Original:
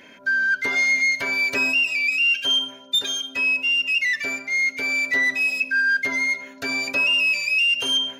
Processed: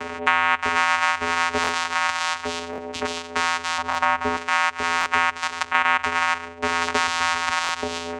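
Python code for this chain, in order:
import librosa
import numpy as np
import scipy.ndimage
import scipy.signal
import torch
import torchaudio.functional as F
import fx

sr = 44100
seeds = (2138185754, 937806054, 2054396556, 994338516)

y = fx.level_steps(x, sr, step_db=10, at=(5.06, 5.89))
y = fx.high_shelf(y, sr, hz=3200.0, db=8.5, at=(6.81, 7.49))
y = 10.0 ** (-14.0 / 20.0) * (np.abs((y / 10.0 ** (-14.0 / 20.0) + 3.0) % 4.0 - 2.0) - 1.0)
y = fx.fixed_phaser(y, sr, hz=960.0, stages=6)
y = fx.vocoder(y, sr, bands=4, carrier='square', carrier_hz=84.6)
y = fx.tilt_shelf(y, sr, db=9.5, hz=1400.0, at=(3.78, 4.37))
y = fx.buffer_glitch(y, sr, at_s=(1.62, 2.71, 3.88, 4.99, 7.62), block=1024, repeats=2)
y = fx.band_squash(y, sr, depth_pct=70)
y = y * librosa.db_to_amplitude(2.5)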